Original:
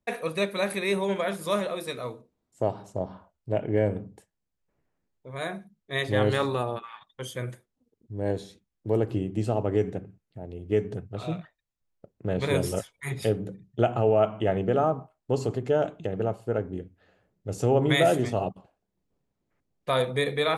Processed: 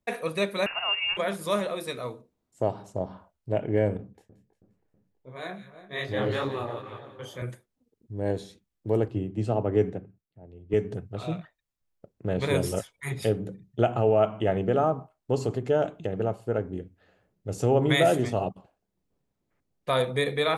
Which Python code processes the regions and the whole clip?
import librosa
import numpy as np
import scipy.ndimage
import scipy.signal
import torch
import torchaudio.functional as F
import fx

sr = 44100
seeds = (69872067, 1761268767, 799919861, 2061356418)

y = fx.chain(x, sr, fx.cheby_ripple_highpass(hz=290.0, ripple_db=3),
    fx.freq_invert(carrier_hz=3200),
    fx.band_squash(depth_pct=40), at=(0.66, 1.17))
y = fx.chain(y, sr, fx.peak_eq(hz=9200.0, db=-10.5, octaves=0.53),
    fx.echo_split(split_hz=1500.0, low_ms=323, high_ms=176, feedback_pct=52, wet_db=-13.5),
    fx.detune_double(cents=58), at=(3.97, 7.42))
y = fx.chain(y, sr, fx.lowpass(hz=9800.0, slope=12),
    fx.high_shelf(hz=3600.0, db=-8.0),
    fx.band_widen(depth_pct=70), at=(9.08, 10.74))